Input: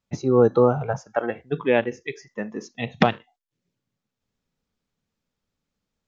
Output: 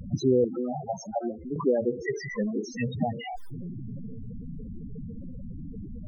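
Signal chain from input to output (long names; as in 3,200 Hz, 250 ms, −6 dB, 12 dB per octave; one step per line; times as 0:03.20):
converter with a step at zero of −27.5 dBFS
brickwall limiter −12.5 dBFS, peak gain reduction 9 dB
spectral peaks only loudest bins 8
pitch vibrato 0.4 Hz 15 cents
0:00.44–0:01.56: phaser with its sweep stopped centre 470 Hz, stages 6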